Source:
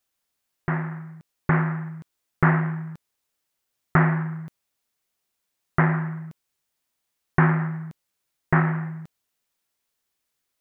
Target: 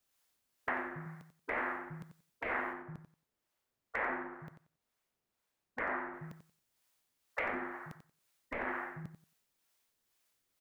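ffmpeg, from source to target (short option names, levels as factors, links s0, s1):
-filter_complex "[0:a]asettb=1/sr,asplit=3[s0][s1][s2];[s0]atrim=end=2.734[s3];[s1]atrim=start=2.73:end=6.14,asetpts=PTS-STARTPTS,afade=t=in:d=0.004:c=qsin,afade=t=out:st=3.406:d=0.004:c=qsin,highshelf=f=2400:g=-10[s4];[s2]atrim=start=6.136[s5];[s3][s4]acrossfade=d=0.004:c1=hsin:c2=qsin[s6];[s6][s5]acrossfade=d=0.004:c1=qsin:c2=hsin,afftfilt=real='re*lt(hypot(re,im),0.158)':imag='im*lt(hypot(re,im),0.158)':win_size=1024:overlap=0.75,acrossover=split=520|2300[s7][s8][s9];[s7]acompressor=threshold=0.01:ratio=4[s10];[s8]acompressor=threshold=0.0126:ratio=4[s11];[s9]acompressor=threshold=0.00794:ratio=4[s12];[s10][s11][s12]amix=inputs=3:normalize=0,aeval=exprs='clip(val(0),-1,0.0668)':c=same,acrossover=split=480[s13][s14];[s13]aeval=exprs='val(0)*(1-0.5/2+0.5/2*cos(2*PI*2.1*n/s))':c=same[s15];[s14]aeval=exprs='val(0)*(1-0.5/2-0.5/2*cos(2*PI*2.1*n/s))':c=same[s16];[s15][s16]amix=inputs=2:normalize=0,aecho=1:1:91|182|273:0.316|0.0569|0.0102,volume=1.26"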